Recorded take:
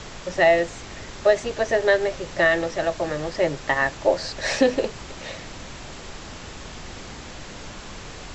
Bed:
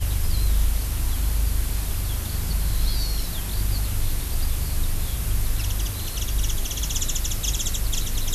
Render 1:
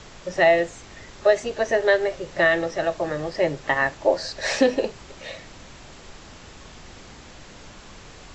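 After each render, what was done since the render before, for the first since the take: noise print and reduce 6 dB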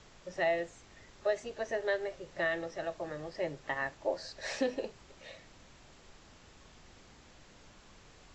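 gain -13.5 dB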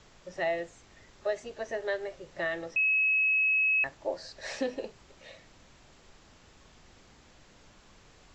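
2.76–3.84 bleep 2570 Hz -22.5 dBFS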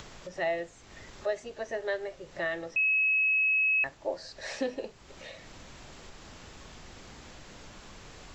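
upward compressor, threshold -38 dBFS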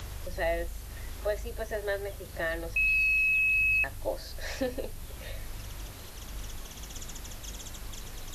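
add bed -17 dB

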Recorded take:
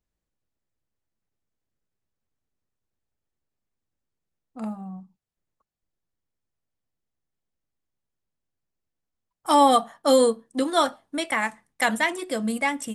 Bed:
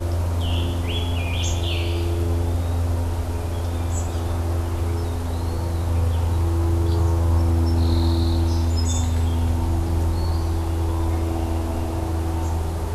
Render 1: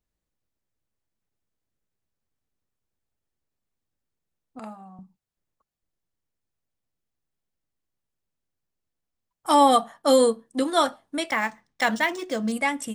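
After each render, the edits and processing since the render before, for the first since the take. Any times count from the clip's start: 4.59–4.99 weighting filter A; 11.3–12.52 decimation joined by straight lines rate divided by 3×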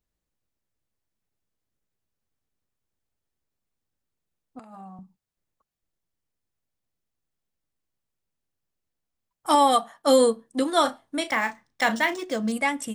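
4.59–4.99 negative-ratio compressor -44 dBFS; 9.55–10.07 low shelf 500 Hz -6.5 dB; 10.81–12.16 doubler 35 ms -10.5 dB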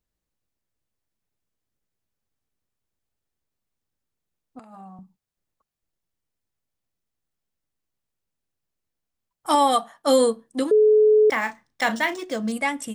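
10.71–11.3 bleep 428 Hz -12 dBFS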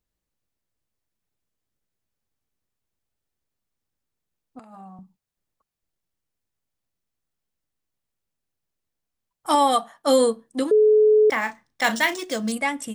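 11.84–12.55 high shelf 2900 Hz +9 dB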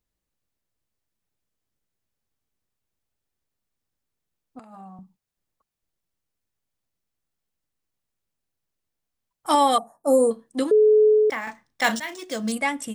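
9.78–10.31 Chebyshev band-stop 680–9500 Hz; 11.06–11.47 fade out, to -8.5 dB; 12–12.51 fade in, from -15 dB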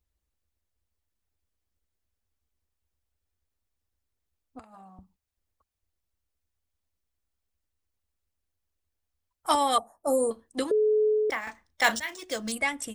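harmonic-percussive split harmonic -7 dB; resonant low shelf 100 Hz +7.5 dB, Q 3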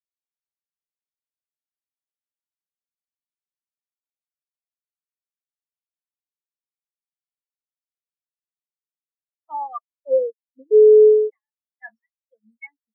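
sample leveller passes 2; spectral expander 4:1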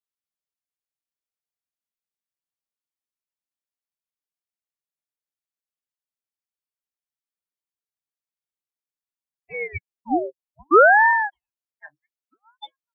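phaser 0.4 Hz, delay 4.1 ms, feedback 32%; ring modulator with a swept carrier 720 Hz, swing 90%, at 0.63 Hz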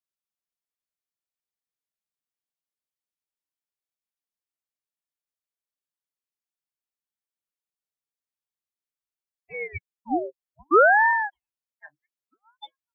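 gain -3.5 dB

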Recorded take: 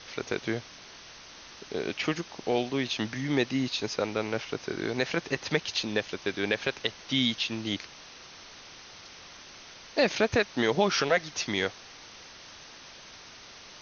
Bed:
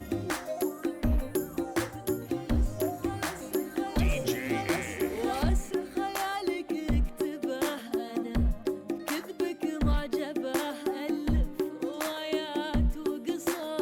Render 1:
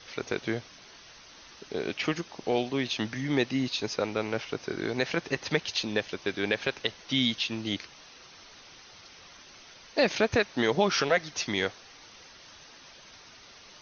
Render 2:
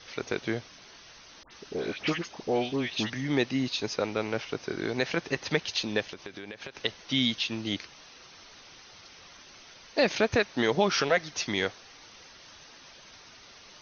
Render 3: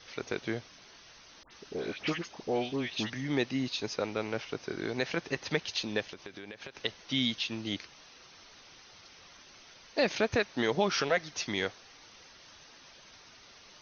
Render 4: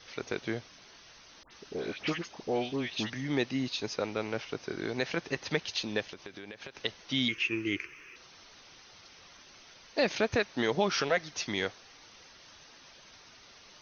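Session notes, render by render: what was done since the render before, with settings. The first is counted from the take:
denoiser 6 dB, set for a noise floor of -49 dBFS
1.43–3.1 dispersion highs, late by 83 ms, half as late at 1600 Hz; 6.11–6.75 compressor 16:1, threshold -36 dBFS
gain -3.5 dB
7.28–8.16 EQ curve 140 Hz 0 dB, 240 Hz -6 dB, 360 Hz +11 dB, 710 Hz -15 dB, 1100 Hz 0 dB, 1700 Hz +6 dB, 2500 Hz +13 dB, 3800 Hz -17 dB, 5900 Hz -5 dB, 10000 Hz +10 dB

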